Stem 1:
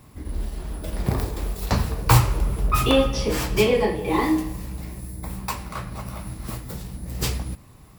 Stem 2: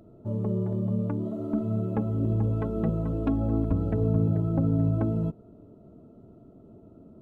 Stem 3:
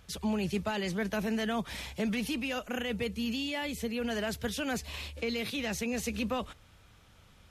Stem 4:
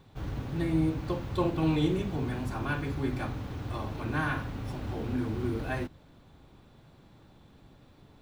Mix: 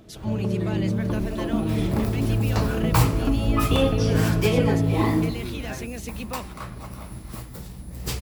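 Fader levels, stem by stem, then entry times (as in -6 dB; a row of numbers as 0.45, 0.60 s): -4.0, +2.0, -2.5, -3.5 dB; 0.85, 0.00, 0.00, 0.00 s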